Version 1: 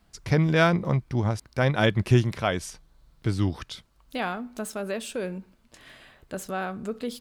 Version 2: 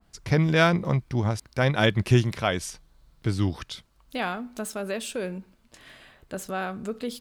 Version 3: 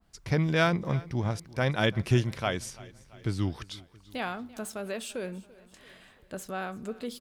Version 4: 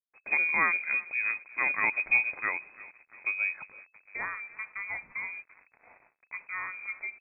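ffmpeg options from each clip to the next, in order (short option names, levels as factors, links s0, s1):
-af "adynamicequalizer=threshold=0.0158:dfrequency=1900:dqfactor=0.7:tfrequency=1900:tqfactor=0.7:attack=5:release=100:ratio=0.375:range=1.5:mode=boostabove:tftype=highshelf"
-af "aecho=1:1:338|676|1014|1352:0.0891|0.0499|0.0279|0.0157,volume=0.596"
-af "acrusher=bits=7:mix=0:aa=0.5,lowpass=f=2200:t=q:w=0.5098,lowpass=f=2200:t=q:w=0.6013,lowpass=f=2200:t=q:w=0.9,lowpass=f=2200:t=q:w=2.563,afreqshift=-2600,volume=0.841"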